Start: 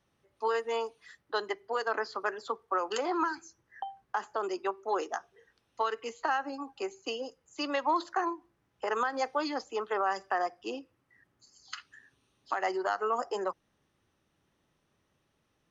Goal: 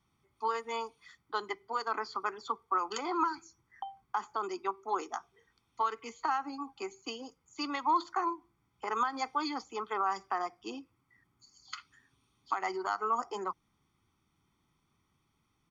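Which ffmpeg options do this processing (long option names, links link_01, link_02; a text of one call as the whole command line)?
ffmpeg -i in.wav -af "aecho=1:1:0.9:0.74,volume=-3dB" out.wav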